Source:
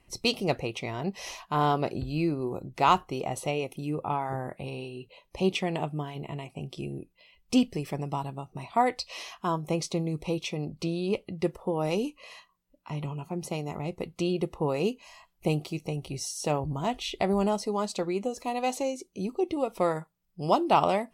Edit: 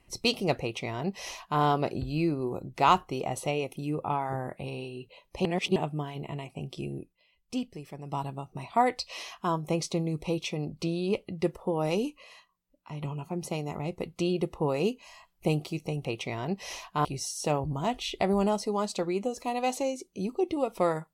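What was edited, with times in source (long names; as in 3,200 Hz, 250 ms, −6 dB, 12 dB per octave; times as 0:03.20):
0:00.61–0:01.61: duplicate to 0:16.05
0:05.45–0:05.76: reverse
0:07.00–0:08.19: duck −9.5 dB, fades 0.17 s
0:12.23–0:13.02: clip gain −4.5 dB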